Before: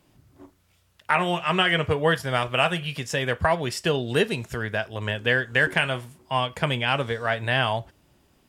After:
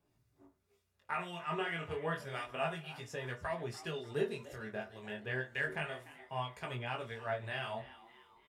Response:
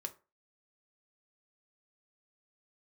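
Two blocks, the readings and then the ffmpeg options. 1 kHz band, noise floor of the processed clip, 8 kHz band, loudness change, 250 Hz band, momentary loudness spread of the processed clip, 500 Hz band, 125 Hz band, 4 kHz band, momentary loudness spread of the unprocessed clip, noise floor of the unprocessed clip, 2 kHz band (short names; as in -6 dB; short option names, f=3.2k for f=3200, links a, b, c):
-15.0 dB, -78 dBFS, -17.5 dB, -15.5 dB, -15.5 dB, 7 LU, -14.0 dB, -16.0 dB, -19.5 dB, 8 LU, -64 dBFS, -16.0 dB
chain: -filter_complex "[0:a]bandreject=f=3.1k:w=11,flanger=delay=16.5:depth=7.6:speed=0.3,acrossover=split=1500[a][b];[a]aeval=exprs='val(0)*(1-0.5/2+0.5/2*cos(2*PI*1.9*n/s))':c=same[c];[b]aeval=exprs='val(0)*(1-0.5/2-0.5/2*cos(2*PI*1.9*n/s))':c=same[d];[c][d]amix=inputs=2:normalize=0,asplit=5[e][f][g][h][i];[f]adelay=295,afreqshift=120,volume=-17dB[j];[g]adelay=590,afreqshift=240,volume=-23.4dB[k];[h]adelay=885,afreqshift=360,volume=-29.8dB[l];[i]adelay=1180,afreqshift=480,volume=-36.1dB[m];[e][j][k][l][m]amix=inputs=5:normalize=0[n];[1:a]atrim=start_sample=2205,asetrate=48510,aresample=44100[o];[n][o]afir=irnorm=-1:irlink=0,volume=-7.5dB"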